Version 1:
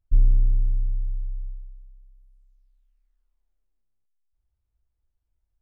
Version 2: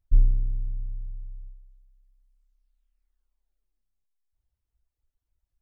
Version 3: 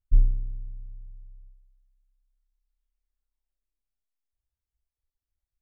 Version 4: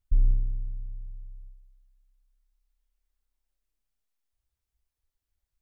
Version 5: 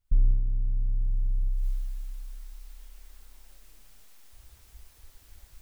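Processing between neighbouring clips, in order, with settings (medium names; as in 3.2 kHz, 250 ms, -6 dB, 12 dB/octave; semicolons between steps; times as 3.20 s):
reverb removal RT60 1.1 s
upward expansion 1.5:1, over -29 dBFS
peak limiter -18.5 dBFS, peak gain reduction 9.5 dB; trim +4 dB
recorder AGC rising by 57 dB/s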